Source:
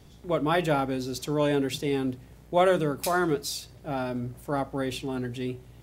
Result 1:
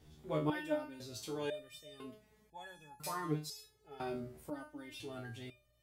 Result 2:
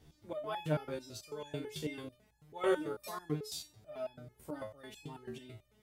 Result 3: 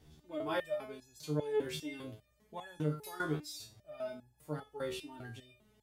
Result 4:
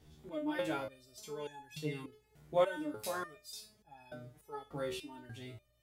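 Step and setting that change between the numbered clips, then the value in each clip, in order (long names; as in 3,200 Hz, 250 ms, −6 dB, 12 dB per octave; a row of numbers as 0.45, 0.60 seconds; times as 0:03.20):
step-sequenced resonator, speed: 2, 9.1, 5, 3.4 Hertz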